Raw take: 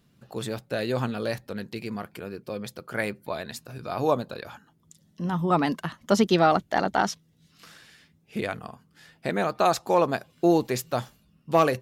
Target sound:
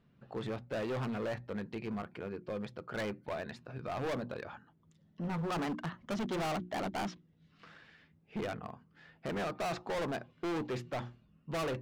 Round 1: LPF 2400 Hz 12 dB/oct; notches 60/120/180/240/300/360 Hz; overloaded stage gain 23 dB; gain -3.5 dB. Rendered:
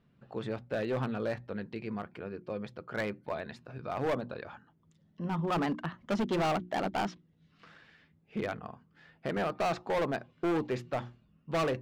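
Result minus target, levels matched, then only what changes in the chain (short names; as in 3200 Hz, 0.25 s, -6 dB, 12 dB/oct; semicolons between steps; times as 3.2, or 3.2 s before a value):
overloaded stage: distortion -4 dB
change: overloaded stage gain 29.5 dB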